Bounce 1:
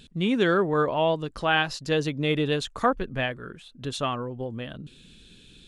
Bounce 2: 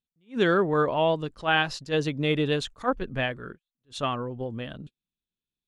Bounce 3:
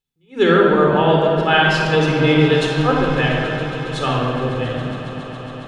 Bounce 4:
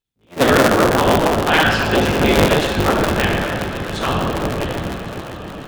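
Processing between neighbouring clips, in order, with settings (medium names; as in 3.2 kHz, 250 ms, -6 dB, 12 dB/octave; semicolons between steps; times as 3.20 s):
gate -39 dBFS, range -43 dB; treble shelf 10 kHz -6.5 dB; attacks held to a fixed rise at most 300 dB/s
on a send: echo with a slow build-up 138 ms, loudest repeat 5, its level -18 dB; on the sum: simulated room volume 3500 m³, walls mixed, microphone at 4.1 m; trim +3.5 dB
cycle switcher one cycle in 3, inverted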